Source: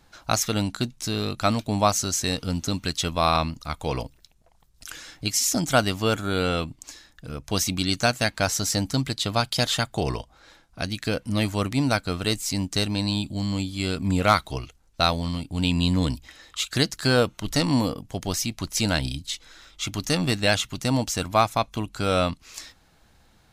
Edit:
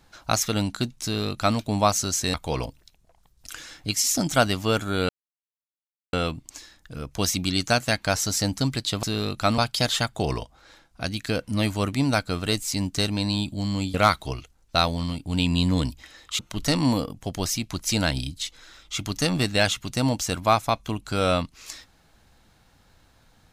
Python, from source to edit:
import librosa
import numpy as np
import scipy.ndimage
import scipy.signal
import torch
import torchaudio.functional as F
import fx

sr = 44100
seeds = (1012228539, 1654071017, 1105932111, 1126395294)

y = fx.edit(x, sr, fx.duplicate(start_s=1.03, length_s=0.55, to_s=9.36),
    fx.cut(start_s=2.34, length_s=1.37),
    fx.insert_silence(at_s=6.46, length_s=1.04),
    fx.cut(start_s=13.72, length_s=0.47),
    fx.cut(start_s=16.64, length_s=0.63), tone=tone)